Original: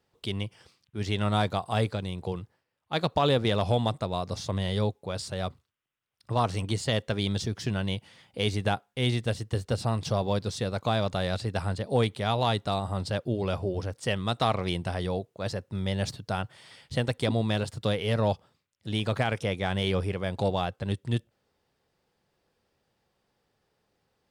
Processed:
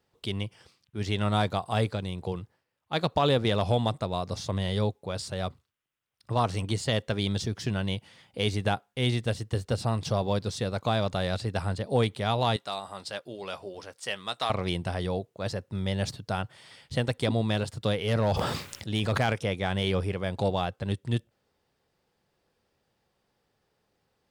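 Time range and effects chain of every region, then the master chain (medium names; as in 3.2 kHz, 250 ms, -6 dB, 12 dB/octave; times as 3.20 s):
12.56–14.50 s: high-pass 1.1 kHz 6 dB/octave + doubling 15 ms -14 dB
18.07–19.33 s: hard clipper -18 dBFS + decay stretcher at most 31 dB/s
whole clip: none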